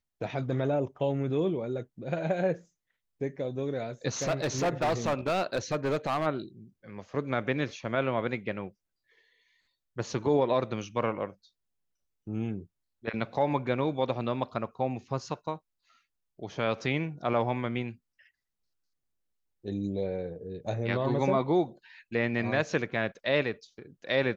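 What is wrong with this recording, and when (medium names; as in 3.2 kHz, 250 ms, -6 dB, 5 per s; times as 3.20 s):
4.22–6.27 s: clipped -23.5 dBFS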